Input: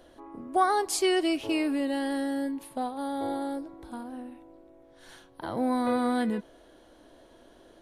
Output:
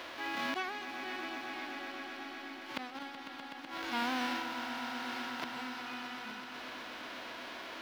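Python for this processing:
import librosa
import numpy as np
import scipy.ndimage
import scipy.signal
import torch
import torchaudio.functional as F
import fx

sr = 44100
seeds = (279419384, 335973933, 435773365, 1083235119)

y = fx.envelope_flatten(x, sr, power=0.1)
y = fx.highpass(y, sr, hz=460.0, slope=6)
y = fx.gate_flip(y, sr, shuts_db=-24.0, range_db=-31)
y = fx.transient(y, sr, attack_db=-7, sustain_db=9)
y = fx.air_absorb(y, sr, metres=300.0)
y = fx.echo_swell(y, sr, ms=125, loudest=5, wet_db=-14.0)
y = fx.band_squash(y, sr, depth_pct=40)
y = F.gain(torch.from_numpy(y), 15.0).numpy()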